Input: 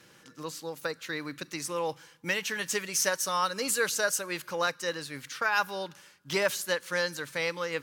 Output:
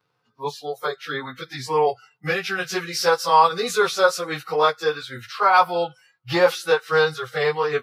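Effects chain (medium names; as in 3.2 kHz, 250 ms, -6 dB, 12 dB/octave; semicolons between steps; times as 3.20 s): frequency-domain pitch shifter -2 st; spectral noise reduction 23 dB; graphic EQ 125/250/500/1000/4000/8000 Hz +10/-6/+8/+10/+6/-8 dB; trim +5 dB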